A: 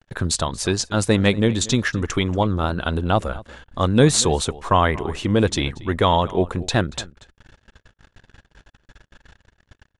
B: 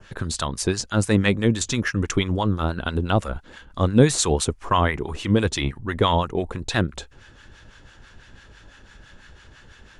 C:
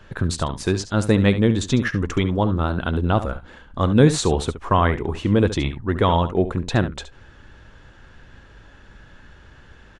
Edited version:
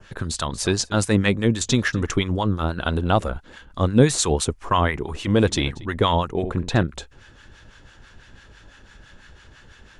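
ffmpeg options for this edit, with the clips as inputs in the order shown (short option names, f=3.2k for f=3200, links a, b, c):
-filter_complex "[0:a]asplit=4[a][b][c][d];[1:a]asplit=6[e][f][g][h][i][j];[e]atrim=end=0.502[k];[a]atrim=start=0.498:end=1.052[l];[f]atrim=start=1.048:end=1.692[m];[b]atrim=start=1.688:end=2.142[n];[g]atrim=start=2.138:end=2.792[o];[c]atrim=start=2.788:end=3.302[p];[h]atrim=start=3.298:end=5.272[q];[d]atrim=start=5.268:end=5.852[r];[i]atrim=start=5.848:end=6.432[s];[2:a]atrim=start=6.428:end=6.832[t];[j]atrim=start=6.828[u];[k][l]acrossfade=d=0.004:c1=hsin:c2=hsin[v];[v][m]acrossfade=d=0.004:c1=hsin:c2=hsin[w];[w][n]acrossfade=d=0.004:c1=hsin:c2=hsin[x];[x][o]acrossfade=d=0.004:c1=hsin:c2=hsin[y];[y][p]acrossfade=d=0.004:c1=hsin:c2=hsin[z];[z][q]acrossfade=d=0.004:c1=hsin:c2=hsin[aa];[aa][r]acrossfade=d=0.004:c1=hsin:c2=hsin[ab];[ab][s]acrossfade=d=0.004:c1=hsin:c2=hsin[ac];[ac][t]acrossfade=d=0.004:c1=hsin:c2=hsin[ad];[ad][u]acrossfade=d=0.004:c1=hsin:c2=hsin"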